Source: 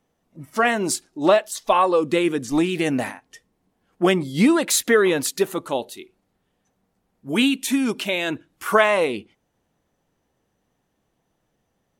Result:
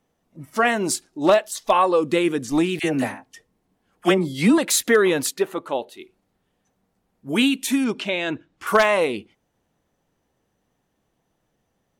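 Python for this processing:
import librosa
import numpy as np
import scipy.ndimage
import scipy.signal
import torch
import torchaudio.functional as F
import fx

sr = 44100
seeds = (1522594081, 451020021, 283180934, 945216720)

y = fx.dispersion(x, sr, late='lows', ms=49.0, hz=920.0, at=(2.79, 4.58))
y = fx.bass_treble(y, sr, bass_db=-8, treble_db=-11, at=(5.33, 5.99), fade=0.02)
y = 10.0 ** (-6.5 / 20.0) * (np.abs((y / 10.0 ** (-6.5 / 20.0) + 3.0) % 4.0 - 2.0) - 1.0)
y = fx.air_absorb(y, sr, metres=85.0, at=(7.84, 8.67))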